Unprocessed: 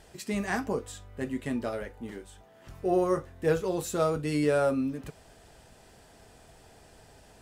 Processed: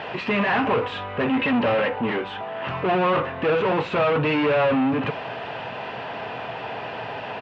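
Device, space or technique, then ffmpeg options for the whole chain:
overdrive pedal into a guitar cabinet: -filter_complex "[0:a]asettb=1/sr,asplit=3[link_01][link_02][link_03];[link_01]atrim=end=1.284[link_04];[link_02]atrim=start=1.28:end=1.94,asetpts=PTS-STARTPTS,afade=type=in:duration=0.004:curve=qsin,afade=type=out:start_time=0.656:duration=0.004:curve=qsin,aecho=1:1:3.8:0.67,atrim=end_sample=29106[link_05];[link_03]atrim=start=1.936[link_06];[link_04][link_05]acrossfade=duration=0.004:curve1=hsin:curve2=qsin[link_07];[link_07][link_06]acrossfade=duration=0.004:curve1=qsin:curve2=hsin,asplit=2[link_08][link_09];[link_09]highpass=frequency=720:poles=1,volume=36dB,asoftclip=type=tanh:threshold=-13dB[link_10];[link_08][link_10]amix=inputs=2:normalize=0,lowpass=frequency=1400:poles=1,volume=-6dB,highpass=110,equalizer=frequency=120:width_type=q:width=4:gain=9,equalizer=frequency=350:width_type=q:width=4:gain=-5,equalizer=frequency=1000:width_type=q:width=4:gain=5,equalizer=frequency=2700:width_type=q:width=4:gain=8,lowpass=frequency=3600:width=0.5412,lowpass=frequency=3600:width=1.3066,aecho=1:1:184:0.0668"

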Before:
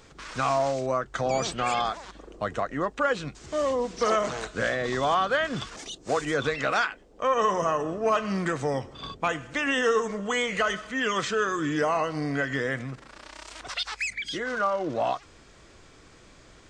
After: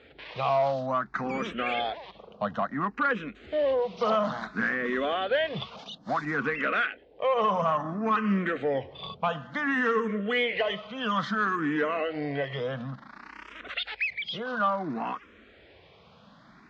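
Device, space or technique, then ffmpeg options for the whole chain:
barber-pole phaser into a guitar amplifier: -filter_complex "[0:a]asplit=2[link_01][link_02];[link_02]afreqshift=0.58[link_03];[link_01][link_03]amix=inputs=2:normalize=1,asoftclip=type=tanh:threshold=-19.5dB,highpass=94,equalizer=frequency=110:width_type=q:width=4:gain=-8,equalizer=frequency=210:width_type=q:width=4:gain=6,equalizer=frequency=340:width_type=q:width=4:gain=-5,lowpass=frequency=3700:width=0.5412,lowpass=frequency=3700:width=1.3066,volume=3dB"

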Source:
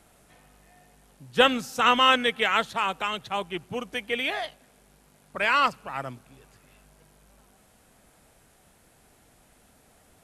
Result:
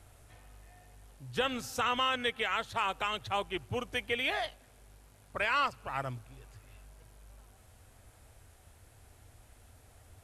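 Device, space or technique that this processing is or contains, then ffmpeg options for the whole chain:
car stereo with a boomy subwoofer: -af "lowshelf=frequency=130:width_type=q:width=3:gain=8,alimiter=limit=-16.5dB:level=0:latency=1:release=220,volume=-2.5dB"

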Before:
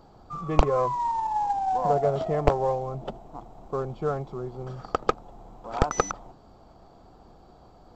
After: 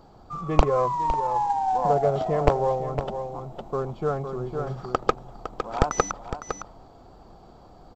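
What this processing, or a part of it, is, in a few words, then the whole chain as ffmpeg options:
ducked delay: -filter_complex "[0:a]asplit=3[link_01][link_02][link_03];[link_02]adelay=508,volume=-4dB[link_04];[link_03]apad=whole_len=373033[link_05];[link_04][link_05]sidechaincompress=threshold=-27dB:ratio=3:attack=11:release=1020[link_06];[link_01][link_06]amix=inputs=2:normalize=0,volume=1.5dB"

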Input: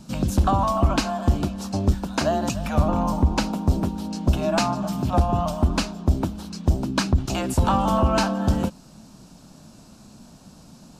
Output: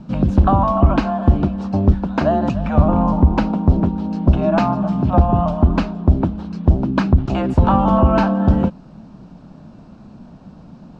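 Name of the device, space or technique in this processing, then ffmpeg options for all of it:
phone in a pocket: -af "lowpass=3100,equalizer=frequency=180:width_type=o:width=0.37:gain=2.5,highshelf=frequency=2000:gain=-10,volume=6.5dB"

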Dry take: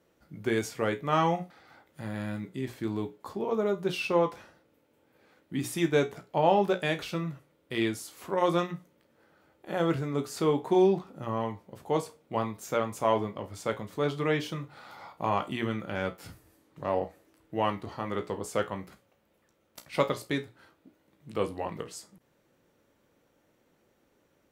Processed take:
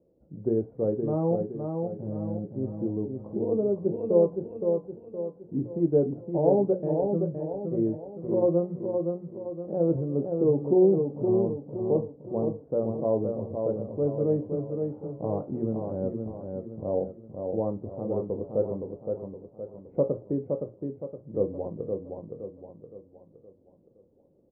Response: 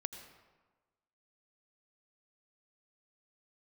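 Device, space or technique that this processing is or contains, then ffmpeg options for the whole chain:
under water: -af "lowpass=frequency=570:width=0.5412,lowpass=frequency=570:width=1.3066,equalizer=frequency=520:width_type=o:width=0.25:gain=4.5,aecho=1:1:517|1034|1551|2068|2585:0.562|0.242|0.104|0.0447|0.0192,volume=2.5dB"

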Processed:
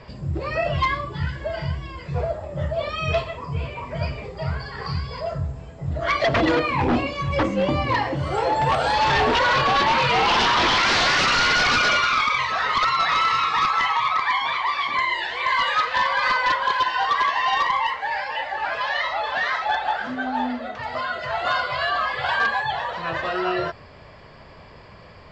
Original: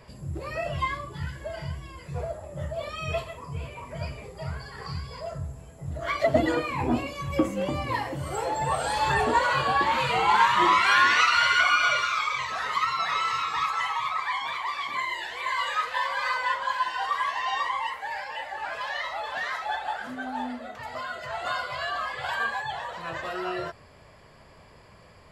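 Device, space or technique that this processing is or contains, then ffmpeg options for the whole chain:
synthesiser wavefolder: -af "aeval=exprs='0.0891*(abs(mod(val(0)/0.0891+3,4)-2)-1)':channel_layout=same,lowpass=frequency=5400:width=0.5412,lowpass=frequency=5400:width=1.3066,volume=7.5dB"

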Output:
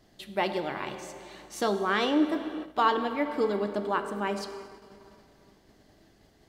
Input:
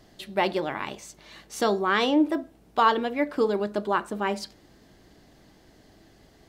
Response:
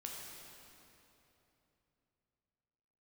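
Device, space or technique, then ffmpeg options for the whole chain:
keyed gated reverb: -filter_complex "[0:a]asplit=3[link_01][link_02][link_03];[1:a]atrim=start_sample=2205[link_04];[link_02][link_04]afir=irnorm=-1:irlink=0[link_05];[link_03]apad=whole_len=286107[link_06];[link_05][link_06]sidechaingate=range=-33dB:threshold=-54dB:ratio=16:detection=peak,volume=-1dB[link_07];[link_01][link_07]amix=inputs=2:normalize=0,volume=-7dB"

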